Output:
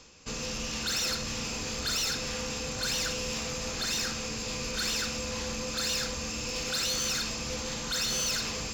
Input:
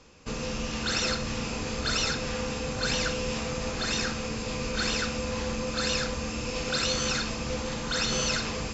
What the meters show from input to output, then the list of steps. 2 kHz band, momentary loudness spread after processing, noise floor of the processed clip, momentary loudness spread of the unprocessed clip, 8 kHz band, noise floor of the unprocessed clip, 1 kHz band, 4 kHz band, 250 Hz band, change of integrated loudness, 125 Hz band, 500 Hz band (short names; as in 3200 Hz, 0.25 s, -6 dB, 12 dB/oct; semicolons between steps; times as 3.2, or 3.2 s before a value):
-3.5 dB, 5 LU, -36 dBFS, 6 LU, n/a, -34 dBFS, -5.0 dB, 0.0 dB, -6.0 dB, -1.5 dB, -6.0 dB, -6.0 dB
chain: high shelf 3200 Hz +11.5 dB; reverse; upward compressor, threshold -39 dBFS; reverse; soft clip -22 dBFS, distortion -11 dB; gain -4 dB